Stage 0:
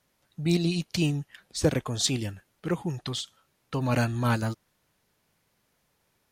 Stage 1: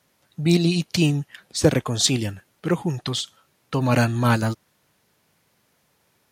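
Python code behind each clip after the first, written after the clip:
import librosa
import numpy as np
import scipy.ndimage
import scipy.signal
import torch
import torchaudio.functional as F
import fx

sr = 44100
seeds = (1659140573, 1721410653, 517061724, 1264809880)

y = scipy.signal.sosfilt(scipy.signal.butter(2, 79.0, 'highpass', fs=sr, output='sos'), x)
y = F.gain(torch.from_numpy(y), 6.5).numpy()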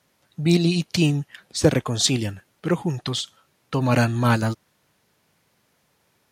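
y = fx.high_shelf(x, sr, hz=11000.0, db=-4.0)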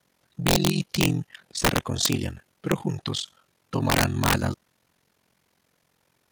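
y = x * np.sin(2.0 * np.pi * 22.0 * np.arange(len(x)) / sr)
y = (np.mod(10.0 ** (11.5 / 20.0) * y + 1.0, 2.0) - 1.0) / 10.0 ** (11.5 / 20.0)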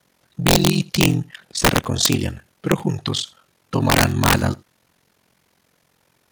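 y = x + 10.0 ** (-24.0 / 20.0) * np.pad(x, (int(81 * sr / 1000.0), 0))[:len(x)]
y = F.gain(torch.from_numpy(y), 6.0).numpy()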